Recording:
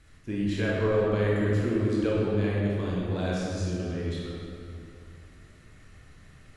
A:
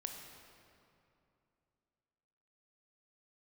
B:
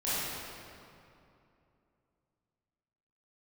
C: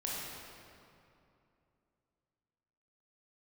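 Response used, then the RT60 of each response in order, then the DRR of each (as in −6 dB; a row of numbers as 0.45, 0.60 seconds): C; 2.7, 2.7, 2.7 seconds; 3.0, −12.5, −5.5 decibels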